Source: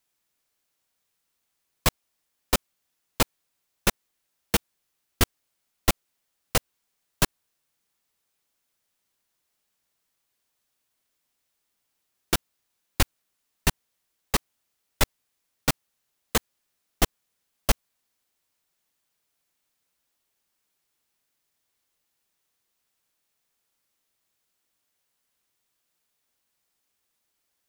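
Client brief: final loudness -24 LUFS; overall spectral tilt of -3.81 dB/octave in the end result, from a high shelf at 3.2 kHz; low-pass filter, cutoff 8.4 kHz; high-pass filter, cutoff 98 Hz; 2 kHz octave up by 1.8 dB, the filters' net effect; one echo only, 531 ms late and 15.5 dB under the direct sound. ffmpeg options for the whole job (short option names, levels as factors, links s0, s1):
-af "highpass=98,lowpass=8400,equalizer=f=2000:t=o:g=5,highshelf=f=3200:g=-8,aecho=1:1:531:0.168,volume=2.24"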